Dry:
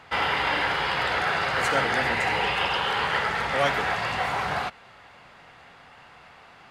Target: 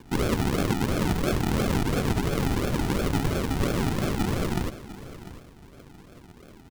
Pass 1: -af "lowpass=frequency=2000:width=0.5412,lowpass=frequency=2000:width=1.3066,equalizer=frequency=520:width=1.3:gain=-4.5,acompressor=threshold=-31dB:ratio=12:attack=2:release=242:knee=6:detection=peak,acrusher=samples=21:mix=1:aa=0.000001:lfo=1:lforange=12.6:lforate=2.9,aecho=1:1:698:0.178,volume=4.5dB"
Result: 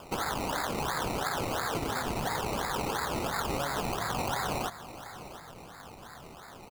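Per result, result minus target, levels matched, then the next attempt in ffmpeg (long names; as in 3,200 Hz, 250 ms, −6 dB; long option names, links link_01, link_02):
downward compressor: peak gain reduction +9 dB; sample-and-hold swept by an LFO: distortion −13 dB
-af "lowpass=frequency=2000:width=0.5412,lowpass=frequency=2000:width=1.3066,equalizer=frequency=520:width=1.3:gain=-4.5,acompressor=threshold=-21dB:ratio=12:attack=2:release=242:knee=6:detection=peak,acrusher=samples=21:mix=1:aa=0.000001:lfo=1:lforange=12.6:lforate=2.9,aecho=1:1:698:0.178,volume=4.5dB"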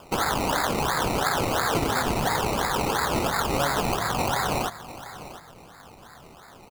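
sample-and-hold swept by an LFO: distortion −13 dB
-af "lowpass=frequency=2000:width=0.5412,lowpass=frequency=2000:width=1.3066,equalizer=frequency=520:width=1.3:gain=-4.5,acompressor=threshold=-21dB:ratio=12:attack=2:release=242:knee=6:detection=peak,acrusher=samples=64:mix=1:aa=0.000001:lfo=1:lforange=38.4:lforate=2.9,aecho=1:1:698:0.178,volume=4.5dB"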